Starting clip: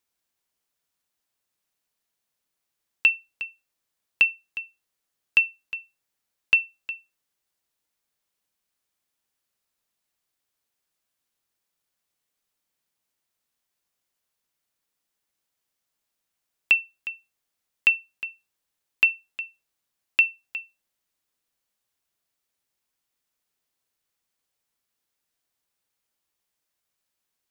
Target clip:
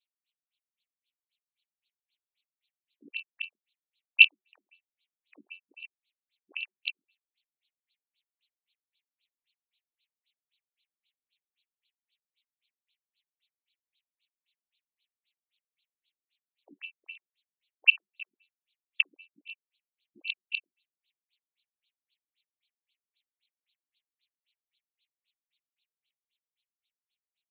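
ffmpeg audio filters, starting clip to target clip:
-filter_complex "[0:a]afftfilt=real='re':imag='-im':win_size=2048:overlap=0.75,acrossover=split=150|3000[a][b][c];[b]acompressor=threshold=-28dB:ratio=10[d];[a][d][c]amix=inputs=3:normalize=0,tiltshelf=f=1.2k:g=-7,aecho=1:1:112:0.211,dynaudnorm=f=250:g=17:m=7.5dB,aeval=exprs='max(val(0),0)':c=same,highpass=100,alimiter=limit=-15.5dB:level=0:latency=1:release=39,aeval=exprs='0.168*(cos(1*acos(clip(val(0)/0.168,-1,1)))-cos(1*PI/2))+0.0335*(cos(7*acos(clip(val(0)/0.168,-1,1)))-cos(7*PI/2))':c=same,tremolo=f=290:d=0.75,aexciter=amount=14.2:drive=6.5:freq=2.2k,afftfilt=real='re*between(b*sr/1024,240*pow(3200/240,0.5+0.5*sin(2*PI*3.8*pts/sr))/1.41,240*pow(3200/240,0.5+0.5*sin(2*PI*3.8*pts/sr))*1.41)':imag='im*between(b*sr/1024,240*pow(3200/240,0.5+0.5*sin(2*PI*3.8*pts/sr))/1.41,240*pow(3200/240,0.5+0.5*sin(2*PI*3.8*pts/sr))*1.41)':win_size=1024:overlap=0.75,volume=-4dB"

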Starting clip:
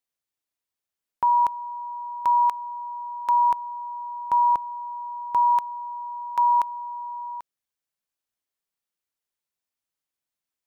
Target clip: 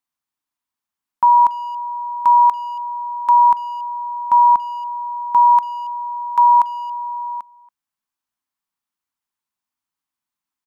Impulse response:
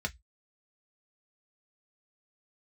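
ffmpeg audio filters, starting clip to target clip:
-filter_complex "[0:a]equalizer=f=250:t=o:w=1:g=7,equalizer=f=500:t=o:w=1:g=-9,equalizer=f=1k:t=o:w=1:g=10,asplit=2[a][b];[b]adelay=280,highpass=300,lowpass=3.4k,asoftclip=type=hard:threshold=-16.5dB,volume=-22dB[c];[a][c]amix=inputs=2:normalize=0"

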